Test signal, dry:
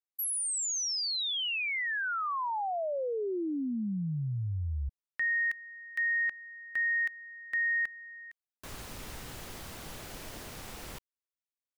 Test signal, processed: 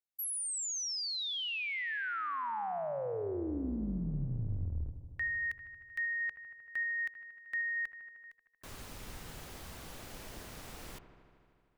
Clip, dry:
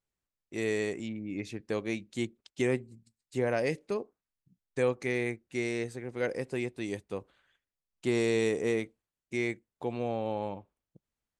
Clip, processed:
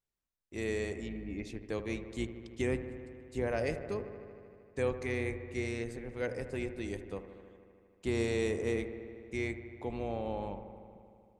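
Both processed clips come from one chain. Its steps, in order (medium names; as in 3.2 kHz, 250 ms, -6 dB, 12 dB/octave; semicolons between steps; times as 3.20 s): octave divider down 2 oct, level -4 dB; on a send: feedback echo behind a low-pass 77 ms, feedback 80%, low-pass 1.9 kHz, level -11.5 dB; on the sum: trim -4.5 dB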